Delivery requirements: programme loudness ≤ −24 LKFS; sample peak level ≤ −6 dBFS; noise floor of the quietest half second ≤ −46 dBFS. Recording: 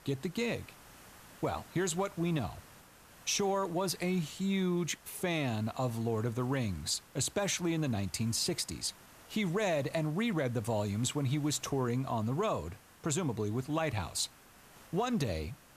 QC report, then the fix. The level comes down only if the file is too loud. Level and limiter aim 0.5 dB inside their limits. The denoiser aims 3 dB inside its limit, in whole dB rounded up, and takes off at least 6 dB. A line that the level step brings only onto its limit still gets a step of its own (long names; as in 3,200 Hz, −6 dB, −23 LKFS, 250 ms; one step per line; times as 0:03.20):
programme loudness −34.0 LKFS: in spec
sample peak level −19.0 dBFS: in spec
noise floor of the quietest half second −58 dBFS: in spec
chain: no processing needed